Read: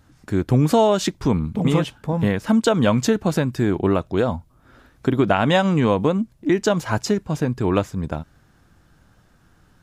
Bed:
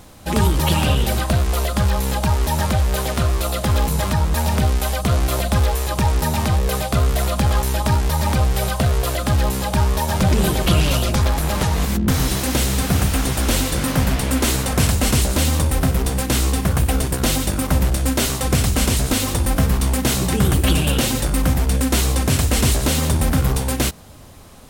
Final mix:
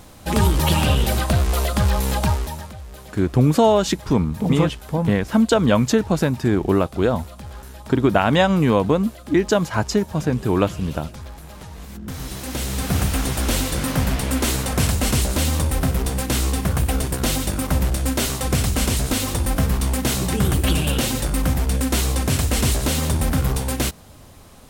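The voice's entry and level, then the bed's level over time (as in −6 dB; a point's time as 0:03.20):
2.85 s, +1.0 dB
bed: 0:02.28 −0.5 dB
0:02.74 −19 dB
0:11.71 −19 dB
0:12.97 −2.5 dB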